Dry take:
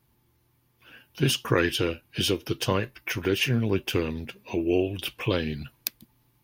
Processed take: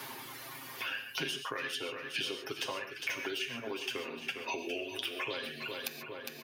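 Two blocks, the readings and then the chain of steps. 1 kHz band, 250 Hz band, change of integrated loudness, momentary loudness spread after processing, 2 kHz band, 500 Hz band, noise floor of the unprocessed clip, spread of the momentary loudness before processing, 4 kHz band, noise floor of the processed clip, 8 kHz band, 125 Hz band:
-6.0 dB, -17.0 dB, -10.0 dB, 7 LU, -4.5 dB, -12.5 dB, -68 dBFS, 10 LU, -6.0 dB, -47 dBFS, -8.5 dB, -25.0 dB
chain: frequency weighting A; reverb removal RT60 1.5 s; bass shelf 250 Hz -7 dB; comb 7.5 ms; compression 3:1, threshold -37 dBFS, peak gain reduction 14 dB; feedback delay 406 ms, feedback 41%, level -12.5 dB; gated-style reverb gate 160 ms flat, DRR 6 dB; three bands compressed up and down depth 100%

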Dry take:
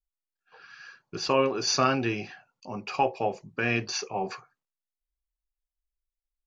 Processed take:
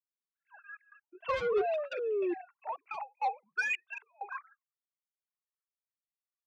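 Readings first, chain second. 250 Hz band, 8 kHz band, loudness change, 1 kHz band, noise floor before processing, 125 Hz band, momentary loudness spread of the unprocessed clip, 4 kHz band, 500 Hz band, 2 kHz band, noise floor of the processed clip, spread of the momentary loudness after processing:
-11.5 dB, no reading, -7.0 dB, -7.0 dB, under -85 dBFS, under -20 dB, 20 LU, -18.0 dB, -3.5 dB, -3.0 dB, under -85 dBFS, 16 LU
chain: formants replaced by sine waves; in parallel at +1 dB: compression, threshold -34 dBFS, peak gain reduction 16.5 dB; on the sum: trance gate "...xxxxxxx..x" 196 bpm -24 dB; high-pass sweep 220 Hz -> 1.3 kHz, 0.29–3.94 s; painted sound fall, 1.57–2.34 s, 340–770 Hz -26 dBFS; level-controlled noise filter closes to 1.9 kHz, open at -21.5 dBFS; saturation -19 dBFS, distortion -9 dB; cancelling through-zero flanger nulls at 0.79 Hz, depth 2.5 ms; trim -3.5 dB

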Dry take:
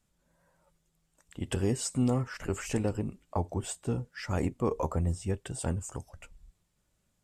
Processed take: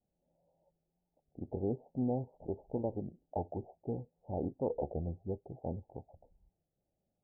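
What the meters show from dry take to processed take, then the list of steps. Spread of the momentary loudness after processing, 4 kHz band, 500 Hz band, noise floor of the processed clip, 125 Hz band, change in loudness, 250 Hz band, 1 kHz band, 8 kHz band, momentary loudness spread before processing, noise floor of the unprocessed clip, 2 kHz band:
9 LU, under -35 dB, -3.5 dB, under -85 dBFS, -9.5 dB, -6.5 dB, -6.0 dB, -6.0 dB, under -40 dB, 8 LU, -76 dBFS, under -40 dB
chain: steep low-pass 830 Hz 96 dB/octave; tilt EQ +3 dB/octave; warped record 33 1/3 rpm, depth 160 cents

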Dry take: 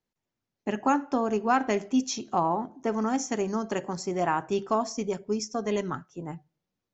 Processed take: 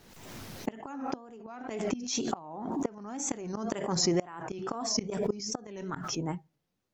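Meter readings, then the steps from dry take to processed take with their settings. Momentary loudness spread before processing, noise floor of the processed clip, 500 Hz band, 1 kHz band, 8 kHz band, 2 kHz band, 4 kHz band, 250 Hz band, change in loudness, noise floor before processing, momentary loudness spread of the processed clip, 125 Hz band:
10 LU, -80 dBFS, -6.0 dB, -11.0 dB, no reading, -9.0 dB, +4.0 dB, -5.0 dB, -5.5 dB, under -85 dBFS, 13 LU, -0.5 dB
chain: wow and flutter 110 cents; inverted gate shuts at -20 dBFS, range -26 dB; swell ahead of each attack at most 44 dB/s; trim +3 dB

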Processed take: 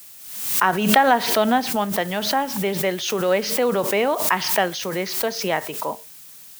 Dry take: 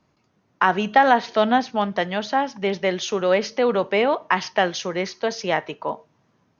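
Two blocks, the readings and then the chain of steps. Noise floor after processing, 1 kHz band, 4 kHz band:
-43 dBFS, -0.5 dB, +4.0 dB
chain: added noise blue -42 dBFS; swell ahead of each attack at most 60 dB/s; trim -1 dB

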